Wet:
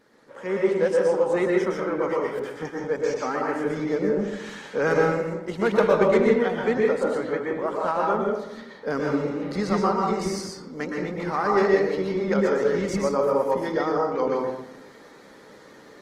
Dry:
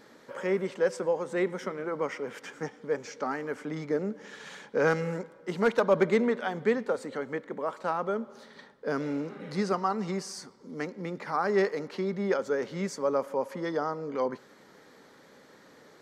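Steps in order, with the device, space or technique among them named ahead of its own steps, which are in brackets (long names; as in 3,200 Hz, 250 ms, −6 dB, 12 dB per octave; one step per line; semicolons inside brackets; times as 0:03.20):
0:02.06–0:02.65: graphic EQ with 15 bands 630 Hz −3 dB, 2,500 Hz −7 dB, 6,300 Hz −11 dB
speakerphone in a meeting room (convolution reverb RT60 0.80 s, pre-delay 113 ms, DRR −1.5 dB; automatic gain control gain up to 8 dB; level −5 dB; Opus 20 kbit/s 48,000 Hz)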